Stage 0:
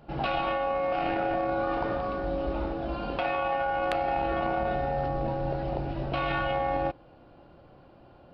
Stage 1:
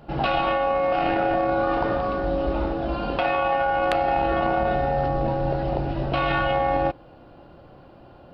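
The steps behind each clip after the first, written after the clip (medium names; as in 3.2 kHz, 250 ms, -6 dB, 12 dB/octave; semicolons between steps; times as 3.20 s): band-stop 2.3 kHz, Q 24; trim +6 dB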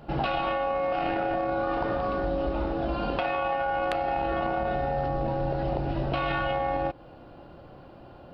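compression, threshold -24 dBFS, peak gain reduction 6.5 dB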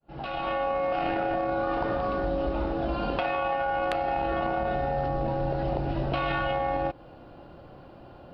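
fade-in on the opening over 0.59 s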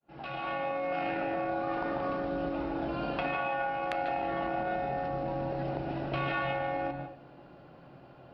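reverberation RT60 0.40 s, pre-delay 140 ms, DRR 5 dB; trim -7 dB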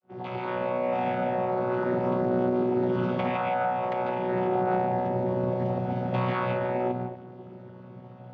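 vocoder on a held chord bare fifth, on B2; trim +7 dB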